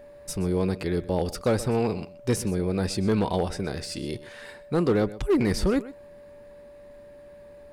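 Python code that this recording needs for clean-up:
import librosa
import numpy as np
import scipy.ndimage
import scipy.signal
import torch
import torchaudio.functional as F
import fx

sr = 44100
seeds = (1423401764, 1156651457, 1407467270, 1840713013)

y = fx.fix_declip(x, sr, threshold_db=-16.5)
y = fx.notch(y, sr, hz=580.0, q=30.0)
y = fx.fix_echo_inverse(y, sr, delay_ms=125, level_db=-17.5)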